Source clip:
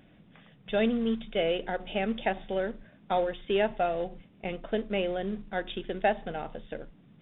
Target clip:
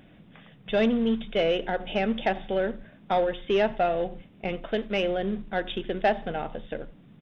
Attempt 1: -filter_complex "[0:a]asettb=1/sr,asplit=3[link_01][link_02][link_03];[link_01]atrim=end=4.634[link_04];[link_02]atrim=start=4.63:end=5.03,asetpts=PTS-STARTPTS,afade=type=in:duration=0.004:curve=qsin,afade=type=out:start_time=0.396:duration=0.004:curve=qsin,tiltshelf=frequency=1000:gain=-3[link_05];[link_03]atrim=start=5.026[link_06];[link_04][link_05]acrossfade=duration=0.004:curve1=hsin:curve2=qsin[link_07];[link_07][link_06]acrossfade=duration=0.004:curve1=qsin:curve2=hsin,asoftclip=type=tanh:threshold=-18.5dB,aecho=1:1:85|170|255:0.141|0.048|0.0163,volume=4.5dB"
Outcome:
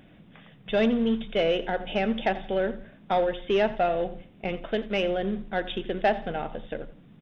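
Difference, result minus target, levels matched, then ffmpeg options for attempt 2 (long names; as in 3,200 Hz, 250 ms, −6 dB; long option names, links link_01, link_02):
echo-to-direct +7 dB
-filter_complex "[0:a]asettb=1/sr,asplit=3[link_01][link_02][link_03];[link_01]atrim=end=4.634[link_04];[link_02]atrim=start=4.63:end=5.03,asetpts=PTS-STARTPTS,afade=type=in:duration=0.004:curve=qsin,afade=type=out:start_time=0.396:duration=0.004:curve=qsin,tiltshelf=frequency=1000:gain=-3[link_05];[link_03]atrim=start=5.026[link_06];[link_04][link_05]acrossfade=duration=0.004:curve1=hsin:curve2=qsin[link_07];[link_07][link_06]acrossfade=duration=0.004:curve1=qsin:curve2=hsin,asoftclip=type=tanh:threshold=-18.5dB,aecho=1:1:85|170:0.0631|0.0215,volume=4.5dB"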